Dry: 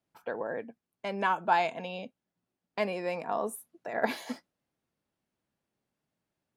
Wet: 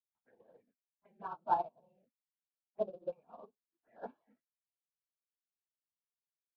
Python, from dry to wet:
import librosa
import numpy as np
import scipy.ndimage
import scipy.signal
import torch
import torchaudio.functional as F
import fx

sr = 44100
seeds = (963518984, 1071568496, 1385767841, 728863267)

p1 = fx.phase_scramble(x, sr, seeds[0], window_ms=50)
p2 = fx.env_lowpass(p1, sr, base_hz=590.0, full_db=-28.0)
p3 = fx.high_shelf(p2, sr, hz=3100.0, db=7.0)
p4 = fx.filter_lfo_lowpass(p3, sr, shape='saw_down', hz=0.32, low_hz=540.0, high_hz=2400.0, q=1.8)
p5 = fx.quant_companded(p4, sr, bits=4)
p6 = p4 + (p5 * 10.0 ** (-4.0 / 20.0))
p7 = fx.env_phaser(p6, sr, low_hz=440.0, high_hz=2000.0, full_db=-23.5)
p8 = fx.air_absorb(p7, sr, metres=410.0)
p9 = fx.upward_expand(p8, sr, threshold_db=-34.0, expansion=2.5)
y = p9 * 10.0 ** (-8.0 / 20.0)